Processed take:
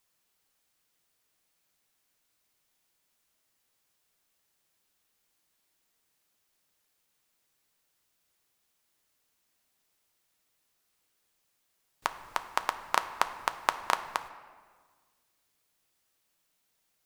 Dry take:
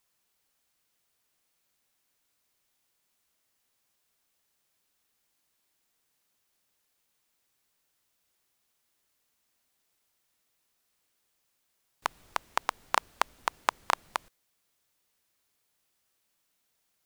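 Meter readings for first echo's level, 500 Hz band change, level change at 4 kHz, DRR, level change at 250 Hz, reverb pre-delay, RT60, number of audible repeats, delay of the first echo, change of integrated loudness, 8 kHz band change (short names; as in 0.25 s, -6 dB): none, +0.5 dB, +0.5 dB, 9.0 dB, +1.0 dB, 6 ms, 1.6 s, none, none, +0.5 dB, +0.5 dB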